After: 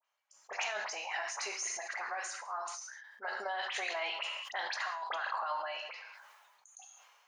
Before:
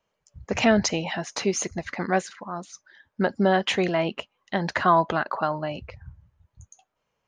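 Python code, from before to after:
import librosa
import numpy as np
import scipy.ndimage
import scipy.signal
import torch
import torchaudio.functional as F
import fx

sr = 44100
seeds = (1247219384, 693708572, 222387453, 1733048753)

y = scipy.signal.sosfilt(scipy.signal.butter(4, 790.0, 'highpass', fs=sr, output='sos'), x)
y = fx.dispersion(y, sr, late='highs', ms=51.0, hz=2400.0)
y = fx.over_compress(y, sr, threshold_db=-30.0, ratio=-1.0)
y = fx.peak_eq(y, sr, hz=3500.0, db=-12.5, octaves=0.52, at=(0.77, 3.37))
y = fx.rev_gated(y, sr, seeds[0], gate_ms=230, shape='falling', drr_db=6.5)
y = fx.sustainer(y, sr, db_per_s=33.0)
y = F.gain(torch.from_numpy(y), -7.5).numpy()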